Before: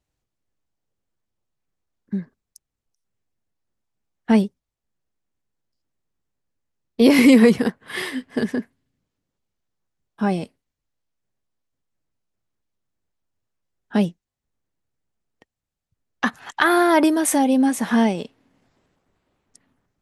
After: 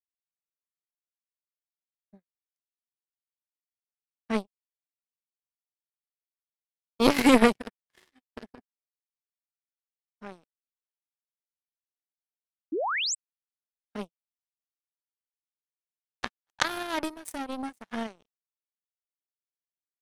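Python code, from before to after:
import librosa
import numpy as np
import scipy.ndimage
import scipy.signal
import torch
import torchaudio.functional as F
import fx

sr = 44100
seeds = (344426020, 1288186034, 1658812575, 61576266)

y = fx.power_curve(x, sr, exponent=3.0)
y = fx.spec_paint(y, sr, seeds[0], shape='rise', start_s=12.72, length_s=0.43, low_hz=280.0, high_hz=8400.0, level_db=-30.0)
y = y * librosa.db_to_amplitude(1.5)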